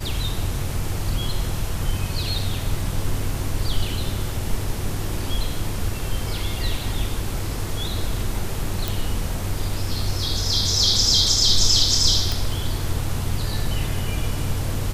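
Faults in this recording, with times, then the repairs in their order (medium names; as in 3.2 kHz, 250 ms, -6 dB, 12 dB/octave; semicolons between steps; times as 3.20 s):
8.88 s: pop
12.32 s: pop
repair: de-click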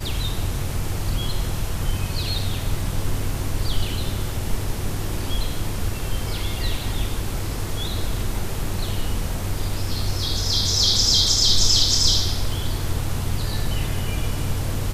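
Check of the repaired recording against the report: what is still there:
nothing left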